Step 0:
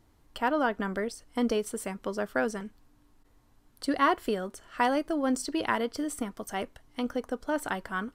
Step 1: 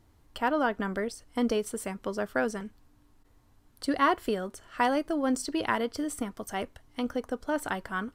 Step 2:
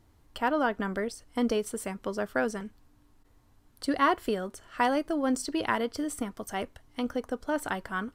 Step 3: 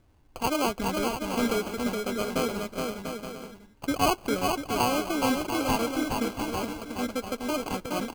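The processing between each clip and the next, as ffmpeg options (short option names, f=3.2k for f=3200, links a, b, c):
-af "equalizer=f=85:w=2.1:g=5.5"
-af anull
-filter_complex "[0:a]acrusher=samples=24:mix=1:aa=0.000001,asplit=2[a][b];[b]aecho=0:1:420|693|870.4|985.8|1061:0.631|0.398|0.251|0.158|0.1[c];[a][c]amix=inputs=2:normalize=0"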